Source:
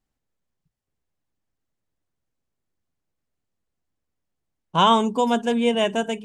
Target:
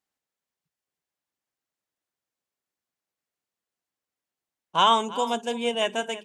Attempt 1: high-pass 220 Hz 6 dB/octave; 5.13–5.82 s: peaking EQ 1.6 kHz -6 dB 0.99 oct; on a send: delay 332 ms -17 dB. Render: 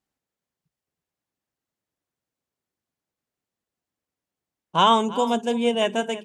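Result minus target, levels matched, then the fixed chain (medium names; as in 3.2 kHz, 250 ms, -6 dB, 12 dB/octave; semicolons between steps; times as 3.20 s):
250 Hz band +5.5 dB
high-pass 780 Hz 6 dB/octave; 5.13–5.82 s: peaking EQ 1.6 kHz -6 dB 0.99 oct; on a send: delay 332 ms -17 dB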